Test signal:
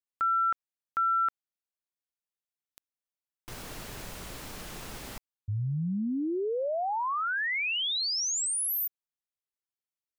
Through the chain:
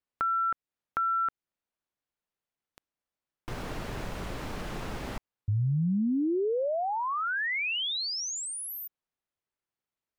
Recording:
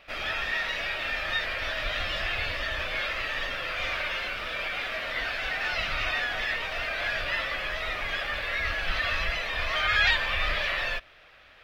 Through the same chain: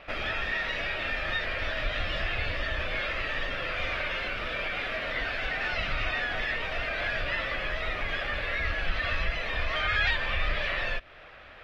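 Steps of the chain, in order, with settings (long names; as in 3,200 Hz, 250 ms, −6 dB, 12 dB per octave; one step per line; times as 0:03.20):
low-pass filter 1,600 Hz 6 dB per octave
dynamic equaliser 940 Hz, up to −5 dB, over −44 dBFS, Q 0.79
downward compressor 1.5 to 1, threshold −42 dBFS
level +8.5 dB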